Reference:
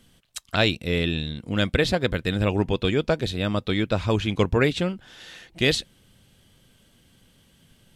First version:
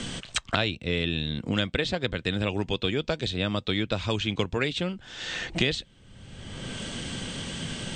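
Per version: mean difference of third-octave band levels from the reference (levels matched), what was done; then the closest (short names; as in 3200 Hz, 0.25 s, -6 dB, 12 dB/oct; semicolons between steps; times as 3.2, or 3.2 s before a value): 5.0 dB: Chebyshev low-pass 8600 Hz, order 6; dynamic EQ 3400 Hz, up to +5 dB, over -41 dBFS, Q 1.6; three-band squash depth 100%; gain -4.5 dB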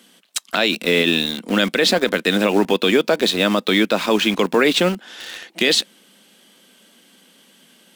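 7.5 dB: steep high-pass 190 Hz 48 dB/oct; low shelf 410 Hz -4.5 dB; in parallel at -6 dB: bit-crush 6-bit; on the sum: maximiser +14 dB; gain -4.5 dB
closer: first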